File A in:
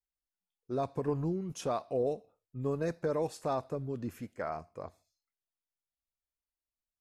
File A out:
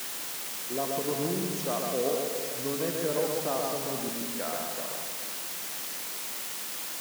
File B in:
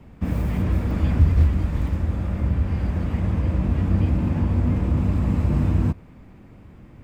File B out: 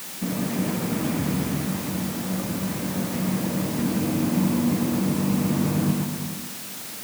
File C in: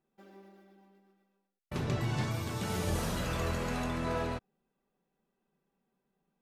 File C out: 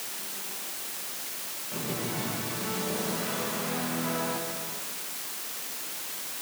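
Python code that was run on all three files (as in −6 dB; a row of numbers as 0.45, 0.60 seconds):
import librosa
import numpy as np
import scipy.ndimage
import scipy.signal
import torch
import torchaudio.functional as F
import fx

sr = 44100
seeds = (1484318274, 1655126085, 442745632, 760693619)

p1 = x + fx.echo_multitap(x, sr, ms=(54, 92, 134, 259, 371), db=(-16.5, -18.5, -3.5, -18.5, -15.5), dry=0)
p2 = fx.rev_gated(p1, sr, seeds[0], gate_ms=500, shape='flat', drr_db=5.0)
p3 = fx.quant_dither(p2, sr, seeds[1], bits=6, dither='triangular')
y = scipy.signal.sosfilt(scipy.signal.butter(4, 160.0, 'highpass', fs=sr, output='sos'), p3)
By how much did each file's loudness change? +4.5, −2.5, +3.0 LU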